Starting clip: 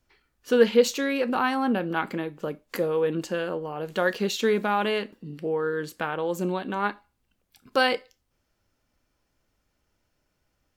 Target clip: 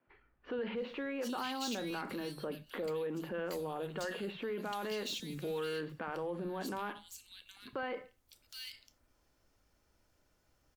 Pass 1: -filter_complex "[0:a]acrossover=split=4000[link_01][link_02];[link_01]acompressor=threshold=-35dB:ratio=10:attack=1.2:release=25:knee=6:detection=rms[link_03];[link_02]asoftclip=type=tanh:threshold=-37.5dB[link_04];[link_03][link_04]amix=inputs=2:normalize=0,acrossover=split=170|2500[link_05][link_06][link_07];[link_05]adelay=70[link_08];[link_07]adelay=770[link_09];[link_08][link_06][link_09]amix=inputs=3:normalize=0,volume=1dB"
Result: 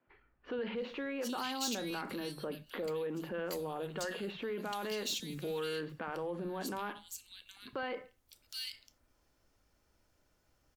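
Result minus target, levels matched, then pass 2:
soft clipping: distortion −6 dB
-filter_complex "[0:a]acrossover=split=4000[link_01][link_02];[link_01]acompressor=threshold=-35dB:ratio=10:attack=1.2:release=25:knee=6:detection=rms[link_03];[link_02]asoftclip=type=tanh:threshold=-48dB[link_04];[link_03][link_04]amix=inputs=2:normalize=0,acrossover=split=170|2500[link_05][link_06][link_07];[link_05]adelay=70[link_08];[link_07]adelay=770[link_09];[link_08][link_06][link_09]amix=inputs=3:normalize=0,volume=1dB"

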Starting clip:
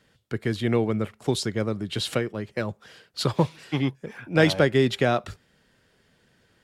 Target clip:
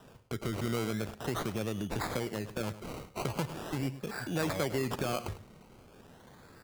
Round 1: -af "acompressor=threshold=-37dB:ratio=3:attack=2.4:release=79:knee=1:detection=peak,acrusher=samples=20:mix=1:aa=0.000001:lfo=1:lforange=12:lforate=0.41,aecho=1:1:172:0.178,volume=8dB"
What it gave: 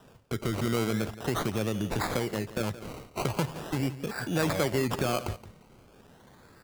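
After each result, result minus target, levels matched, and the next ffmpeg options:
echo 68 ms late; downward compressor: peak gain reduction −4.5 dB
-af "acompressor=threshold=-37dB:ratio=3:attack=2.4:release=79:knee=1:detection=peak,acrusher=samples=20:mix=1:aa=0.000001:lfo=1:lforange=12:lforate=0.41,aecho=1:1:104:0.178,volume=8dB"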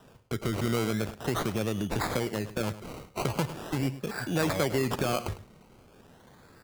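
downward compressor: peak gain reduction −4.5 dB
-af "acompressor=threshold=-44dB:ratio=3:attack=2.4:release=79:knee=1:detection=peak,acrusher=samples=20:mix=1:aa=0.000001:lfo=1:lforange=12:lforate=0.41,aecho=1:1:104:0.178,volume=8dB"

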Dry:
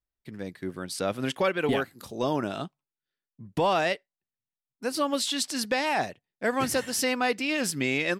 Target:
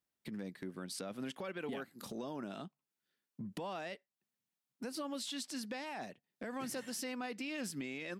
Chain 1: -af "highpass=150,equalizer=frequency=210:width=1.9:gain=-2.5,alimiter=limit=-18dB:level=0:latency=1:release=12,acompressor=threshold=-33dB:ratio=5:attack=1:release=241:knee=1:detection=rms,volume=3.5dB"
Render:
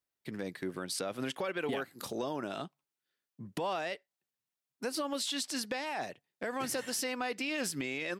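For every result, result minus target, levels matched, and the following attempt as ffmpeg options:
downward compressor: peak gain reduction −7.5 dB; 250 Hz band −3.5 dB
-af "highpass=150,equalizer=frequency=210:width=1.9:gain=-2.5,alimiter=limit=-18dB:level=0:latency=1:release=12,acompressor=threshold=-42dB:ratio=5:attack=1:release=241:knee=1:detection=rms,volume=3.5dB"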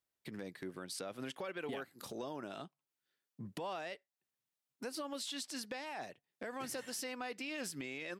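250 Hz band −3.0 dB
-af "highpass=150,equalizer=frequency=210:width=1.9:gain=6.5,alimiter=limit=-18dB:level=0:latency=1:release=12,acompressor=threshold=-42dB:ratio=5:attack=1:release=241:knee=1:detection=rms,volume=3.5dB"

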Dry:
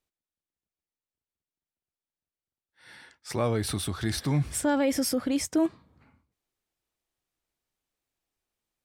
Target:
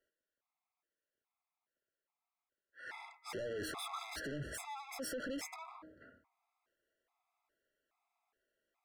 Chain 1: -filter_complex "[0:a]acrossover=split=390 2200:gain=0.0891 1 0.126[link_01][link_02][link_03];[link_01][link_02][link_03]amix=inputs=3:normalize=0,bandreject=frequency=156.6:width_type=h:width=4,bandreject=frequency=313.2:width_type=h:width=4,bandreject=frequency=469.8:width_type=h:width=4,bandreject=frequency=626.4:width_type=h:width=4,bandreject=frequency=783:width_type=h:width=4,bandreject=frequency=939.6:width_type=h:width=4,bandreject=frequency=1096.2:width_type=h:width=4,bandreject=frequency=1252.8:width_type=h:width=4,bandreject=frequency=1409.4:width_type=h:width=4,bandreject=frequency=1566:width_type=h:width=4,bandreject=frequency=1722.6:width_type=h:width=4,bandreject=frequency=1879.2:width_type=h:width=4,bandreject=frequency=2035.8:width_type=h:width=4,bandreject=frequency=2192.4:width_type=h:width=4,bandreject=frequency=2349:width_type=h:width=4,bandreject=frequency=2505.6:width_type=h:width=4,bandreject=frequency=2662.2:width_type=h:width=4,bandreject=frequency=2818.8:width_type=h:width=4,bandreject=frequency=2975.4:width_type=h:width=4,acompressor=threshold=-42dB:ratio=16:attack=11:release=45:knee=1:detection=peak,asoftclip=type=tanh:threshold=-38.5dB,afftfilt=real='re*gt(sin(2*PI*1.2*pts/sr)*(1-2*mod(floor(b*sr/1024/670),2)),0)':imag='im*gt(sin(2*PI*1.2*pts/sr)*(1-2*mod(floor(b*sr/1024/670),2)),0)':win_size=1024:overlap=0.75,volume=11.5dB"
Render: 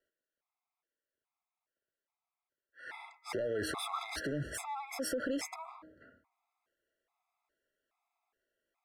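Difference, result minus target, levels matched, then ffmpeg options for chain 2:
soft clipping: distortion −9 dB
-filter_complex "[0:a]acrossover=split=390 2200:gain=0.0891 1 0.126[link_01][link_02][link_03];[link_01][link_02][link_03]amix=inputs=3:normalize=0,bandreject=frequency=156.6:width_type=h:width=4,bandreject=frequency=313.2:width_type=h:width=4,bandreject=frequency=469.8:width_type=h:width=4,bandreject=frequency=626.4:width_type=h:width=4,bandreject=frequency=783:width_type=h:width=4,bandreject=frequency=939.6:width_type=h:width=4,bandreject=frequency=1096.2:width_type=h:width=4,bandreject=frequency=1252.8:width_type=h:width=4,bandreject=frequency=1409.4:width_type=h:width=4,bandreject=frequency=1566:width_type=h:width=4,bandreject=frequency=1722.6:width_type=h:width=4,bandreject=frequency=1879.2:width_type=h:width=4,bandreject=frequency=2035.8:width_type=h:width=4,bandreject=frequency=2192.4:width_type=h:width=4,bandreject=frequency=2349:width_type=h:width=4,bandreject=frequency=2505.6:width_type=h:width=4,bandreject=frequency=2662.2:width_type=h:width=4,bandreject=frequency=2818.8:width_type=h:width=4,bandreject=frequency=2975.4:width_type=h:width=4,acompressor=threshold=-42dB:ratio=16:attack=11:release=45:knee=1:detection=peak,asoftclip=type=tanh:threshold=-49dB,afftfilt=real='re*gt(sin(2*PI*1.2*pts/sr)*(1-2*mod(floor(b*sr/1024/670),2)),0)':imag='im*gt(sin(2*PI*1.2*pts/sr)*(1-2*mod(floor(b*sr/1024/670),2)),0)':win_size=1024:overlap=0.75,volume=11.5dB"

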